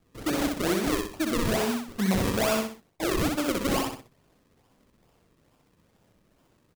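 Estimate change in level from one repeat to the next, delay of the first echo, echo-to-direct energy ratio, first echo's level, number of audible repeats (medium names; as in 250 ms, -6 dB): -9.0 dB, 63 ms, -3.0 dB, -3.5 dB, 3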